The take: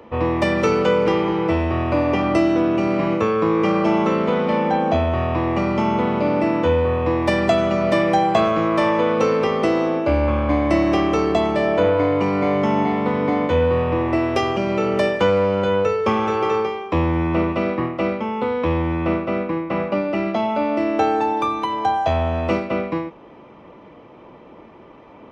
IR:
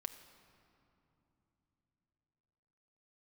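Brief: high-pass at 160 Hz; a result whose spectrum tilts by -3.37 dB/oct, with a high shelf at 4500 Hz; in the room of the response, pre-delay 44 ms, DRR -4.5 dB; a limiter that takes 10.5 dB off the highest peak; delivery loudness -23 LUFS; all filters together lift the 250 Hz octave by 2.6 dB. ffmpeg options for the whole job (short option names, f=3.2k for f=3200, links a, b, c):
-filter_complex "[0:a]highpass=160,equalizer=f=250:t=o:g=4.5,highshelf=f=4.5k:g=-3.5,alimiter=limit=-14dB:level=0:latency=1,asplit=2[a][b];[1:a]atrim=start_sample=2205,adelay=44[c];[b][c]afir=irnorm=-1:irlink=0,volume=7.5dB[d];[a][d]amix=inputs=2:normalize=0,volume=-5.5dB"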